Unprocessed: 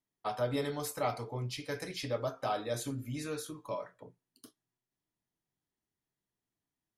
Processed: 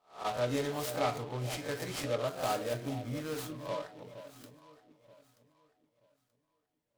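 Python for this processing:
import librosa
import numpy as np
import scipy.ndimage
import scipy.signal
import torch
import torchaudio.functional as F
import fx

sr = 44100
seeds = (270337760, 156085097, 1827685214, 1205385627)

y = fx.spec_swells(x, sr, rise_s=0.34)
y = fx.resample_bad(y, sr, factor=8, down='filtered', up='hold', at=(2.28, 3.34))
y = fx.echo_alternate(y, sr, ms=465, hz=880.0, feedback_pct=52, wet_db=-11)
y = fx.noise_mod_delay(y, sr, seeds[0], noise_hz=2500.0, depth_ms=0.042)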